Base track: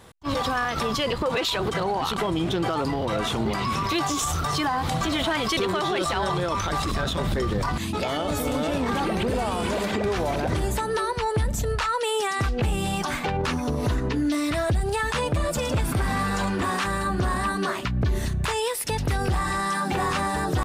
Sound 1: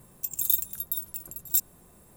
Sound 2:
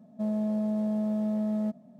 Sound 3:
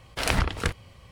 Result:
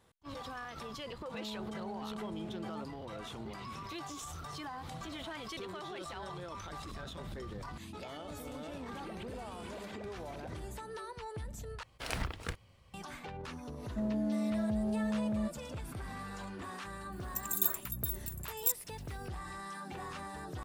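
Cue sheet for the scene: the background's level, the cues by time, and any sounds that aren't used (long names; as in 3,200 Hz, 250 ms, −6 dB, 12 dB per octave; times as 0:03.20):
base track −18.5 dB
0:01.13: mix in 2 −15 dB + highs frequency-modulated by the lows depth 0.34 ms
0:11.83: overwrite with 3 −12.5 dB + one scale factor per block 7 bits
0:13.77: mix in 2 −5 dB
0:17.12: mix in 1 −6.5 dB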